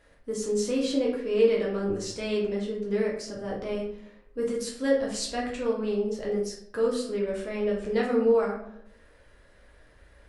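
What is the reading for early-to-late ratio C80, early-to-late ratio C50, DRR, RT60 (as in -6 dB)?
8.0 dB, 4.0 dB, -4.0 dB, 0.70 s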